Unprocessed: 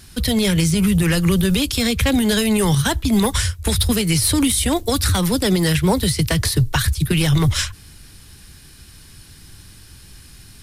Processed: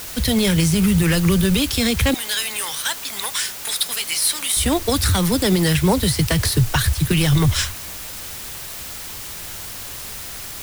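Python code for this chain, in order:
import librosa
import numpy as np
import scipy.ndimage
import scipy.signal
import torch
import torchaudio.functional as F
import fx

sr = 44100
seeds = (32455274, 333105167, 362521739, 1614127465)

y = fx.highpass(x, sr, hz=1300.0, slope=12, at=(2.14, 4.57))
y = fx.dmg_noise_colour(y, sr, seeds[0], colour='white', level_db=-33.0)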